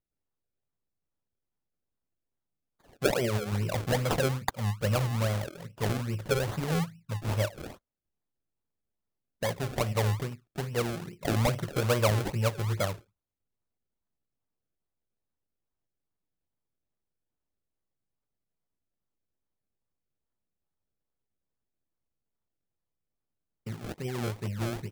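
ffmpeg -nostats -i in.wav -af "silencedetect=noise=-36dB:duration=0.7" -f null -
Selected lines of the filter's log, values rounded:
silence_start: 0.00
silence_end: 3.02 | silence_duration: 3.02
silence_start: 7.70
silence_end: 9.43 | silence_duration: 1.72
silence_start: 12.94
silence_end: 23.67 | silence_duration: 10.72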